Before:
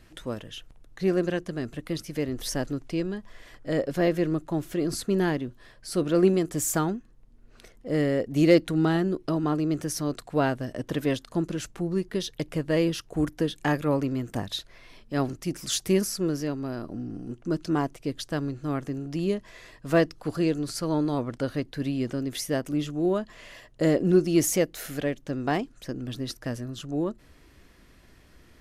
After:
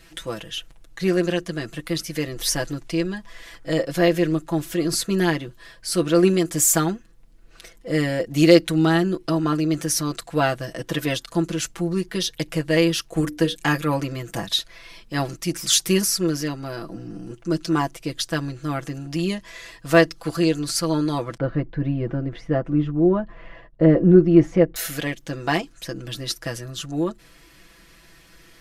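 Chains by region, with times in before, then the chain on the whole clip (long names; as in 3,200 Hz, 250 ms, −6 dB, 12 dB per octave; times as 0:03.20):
0:13.08–0:13.55: mains-hum notches 60/120/180/240/300/360/420/480 Hz + transient designer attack +3 dB, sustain −2 dB
0:21.37–0:24.76: downward expander −49 dBFS + low-pass filter 1,500 Hz + spectral tilt −2 dB per octave
whole clip: tilt shelving filter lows −4.5 dB, about 1,100 Hz; comb filter 6 ms, depth 79%; level +4 dB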